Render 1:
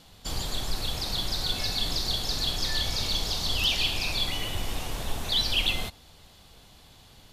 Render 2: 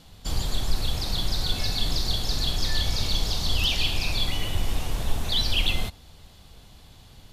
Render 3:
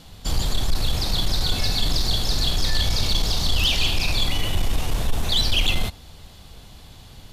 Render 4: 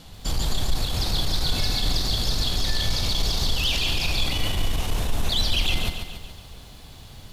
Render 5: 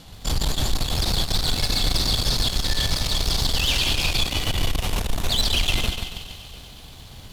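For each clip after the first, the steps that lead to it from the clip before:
low-shelf EQ 190 Hz +7.5 dB
soft clipping −17 dBFS, distortion −17 dB; level +5.5 dB
brickwall limiter −16.5 dBFS, peak gain reduction 4.5 dB; feedback echo at a low word length 141 ms, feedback 55%, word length 9 bits, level −7 dB
feedback echo with a high-pass in the loop 120 ms, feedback 81%, high-pass 840 Hz, level −13.5 dB; harmonic generator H 6 −17 dB, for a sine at −11 dBFS; level +1 dB

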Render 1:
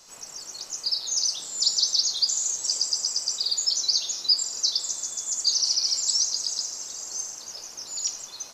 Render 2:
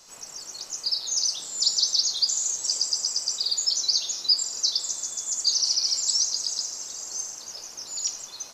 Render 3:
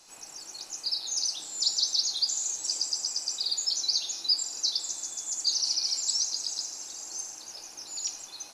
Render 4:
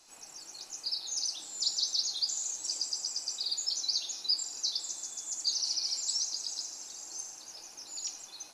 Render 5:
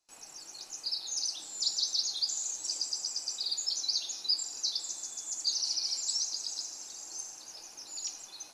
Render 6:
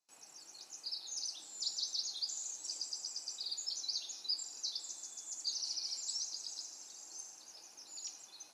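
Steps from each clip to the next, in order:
no processing that can be heard
thirty-one-band graphic EQ 315 Hz +8 dB, 800 Hz +7 dB, 1,600 Hz +3 dB, 2,500 Hz +6 dB, 4,000 Hz +4 dB, 10,000 Hz +11 dB; level −6 dB
flanger 0.75 Hz, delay 2.7 ms, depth 5.5 ms, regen −62%
noise gate with hold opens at −48 dBFS
high-pass filter 120 Hz 12 dB per octave; level −7.5 dB

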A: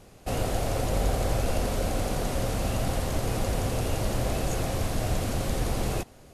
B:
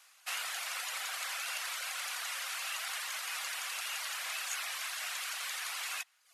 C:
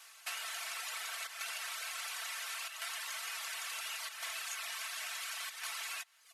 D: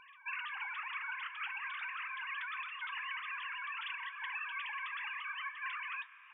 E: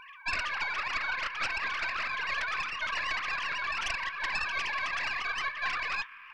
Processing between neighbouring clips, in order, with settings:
high-pass filter 1,200 Hz 24 dB per octave; reverb reduction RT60 0.65 s; dynamic equaliser 2,300 Hz, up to +5 dB, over −57 dBFS, Q 0.77
square-wave tremolo 0.71 Hz, depth 65%, duty 90%; comb filter 4.5 ms, depth 68%; downward compressor 6 to 1, threshold −43 dBFS, peak gain reduction 10.5 dB; level +4 dB
three sine waves on the formant tracks; flanger 0.34 Hz, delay 8.1 ms, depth 2.8 ms, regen −70%; on a send at −16 dB: convolution reverb RT60 5.3 s, pre-delay 95 ms; on the sum: level +4.5 dB
stylus tracing distortion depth 0.083 ms; level +8.5 dB

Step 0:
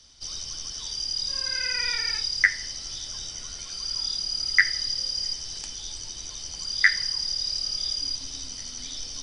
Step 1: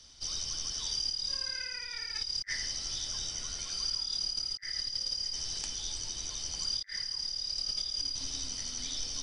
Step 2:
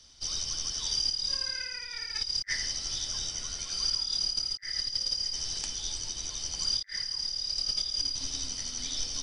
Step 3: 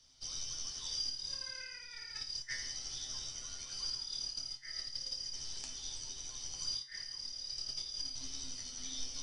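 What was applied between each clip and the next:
compressor whose output falls as the input rises −31 dBFS, ratio −0.5; level −4 dB
expander for the loud parts 1.5 to 1, over −43 dBFS; level +5 dB
tuned comb filter 130 Hz, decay 0.37 s, harmonics all, mix 80%

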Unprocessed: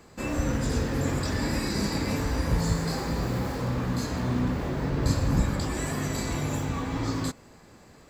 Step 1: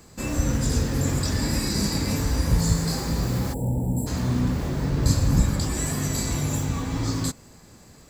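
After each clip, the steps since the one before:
gain on a spectral selection 0:03.53–0:04.07, 950–7,300 Hz −30 dB
bass and treble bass +6 dB, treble +10 dB
level −1 dB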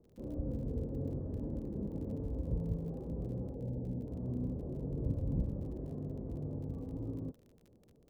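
transistor ladder low-pass 600 Hz, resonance 40%
surface crackle 40 per second −44 dBFS
level −6.5 dB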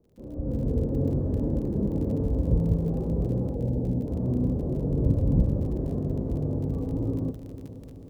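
automatic gain control gain up to 12 dB
on a send: feedback delay with all-pass diffusion 451 ms, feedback 64%, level −14 dB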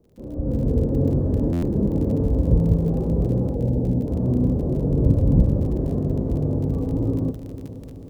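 buffer that repeats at 0:01.52, samples 512, times 8
level +5.5 dB

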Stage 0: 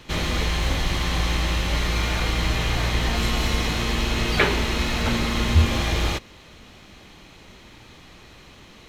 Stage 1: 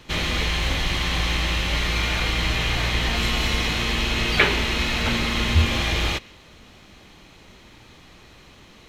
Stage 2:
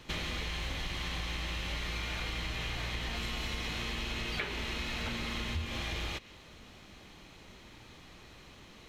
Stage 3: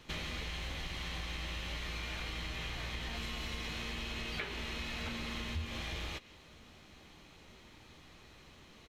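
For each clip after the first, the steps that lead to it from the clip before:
dynamic equaliser 2,700 Hz, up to +6 dB, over −43 dBFS, Q 0.9; level −1.5 dB
downward compressor 5 to 1, threshold −29 dBFS, peak gain reduction 15 dB; level −5 dB
double-tracking delay 13 ms −12.5 dB; level −4 dB

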